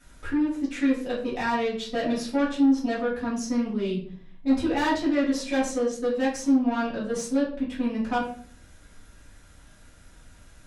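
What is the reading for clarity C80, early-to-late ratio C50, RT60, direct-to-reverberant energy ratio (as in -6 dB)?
10.0 dB, 6.0 dB, 0.50 s, -9.5 dB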